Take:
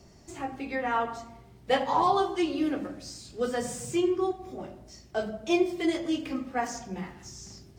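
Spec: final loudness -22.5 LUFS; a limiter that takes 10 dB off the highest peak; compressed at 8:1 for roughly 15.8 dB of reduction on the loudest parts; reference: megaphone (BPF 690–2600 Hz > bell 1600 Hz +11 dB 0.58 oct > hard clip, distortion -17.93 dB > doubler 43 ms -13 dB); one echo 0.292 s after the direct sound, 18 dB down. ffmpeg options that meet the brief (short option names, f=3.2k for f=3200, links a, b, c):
-filter_complex "[0:a]acompressor=threshold=-36dB:ratio=8,alimiter=level_in=12dB:limit=-24dB:level=0:latency=1,volume=-12dB,highpass=690,lowpass=2.6k,equalizer=f=1.6k:t=o:w=0.58:g=11,aecho=1:1:292:0.126,asoftclip=type=hard:threshold=-39dB,asplit=2[a][b];[b]adelay=43,volume=-13dB[c];[a][c]amix=inputs=2:normalize=0,volume=25.5dB"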